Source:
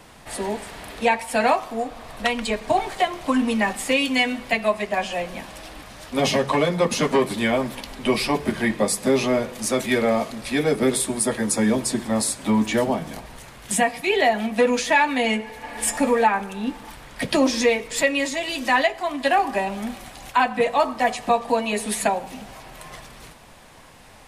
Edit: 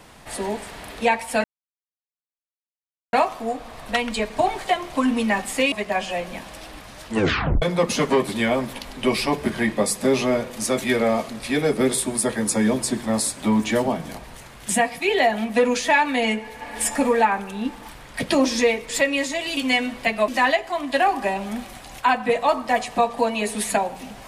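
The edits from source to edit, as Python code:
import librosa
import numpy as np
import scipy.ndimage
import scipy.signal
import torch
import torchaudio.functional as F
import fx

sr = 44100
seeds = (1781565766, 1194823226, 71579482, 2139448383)

y = fx.edit(x, sr, fx.insert_silence(at_s=1.44, length_s=1.69),
    fx.move(start_s=4.03, length_s=0.71, to_s=18.59),
    fx.tape_stop(start_s=6.08, length_s=0.56), tone=tone)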